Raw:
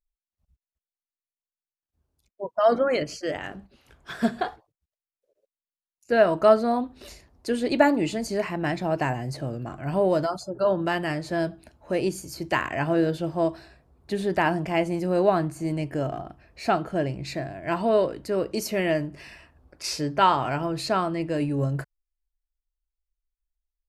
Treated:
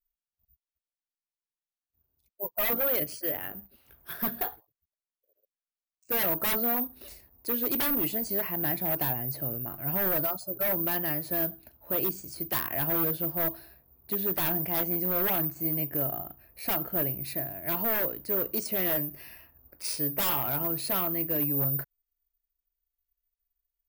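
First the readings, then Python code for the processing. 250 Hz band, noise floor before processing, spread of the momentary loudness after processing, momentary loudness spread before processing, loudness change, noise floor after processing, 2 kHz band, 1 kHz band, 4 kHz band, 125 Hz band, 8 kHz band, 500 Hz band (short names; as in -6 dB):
-8.0 dB, under -85 dBFS, 10 LU, 12 LU, -2.0 dB, under -85 dBFS, -6.5 dB, -10.5 dB, -4.0 dB, -7.0 dB, +0.5 dB, -11.0 dB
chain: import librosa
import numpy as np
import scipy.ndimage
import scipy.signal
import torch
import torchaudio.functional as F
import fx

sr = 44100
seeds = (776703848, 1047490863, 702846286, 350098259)

y = (np.kron(scipy.signal.resample_poly(x, 1, 3), np.eye(3)[0]) * 3)[:len(x)]
y = 10.0 ** (-10.5 / 20.0) * (np.abs((y / 10.0 ** (-10.5 / 20.0) + 3.0) % 4.0 - 2.0) - 1.0)
y = y * 10.0 ** (-6.5 / 20.0)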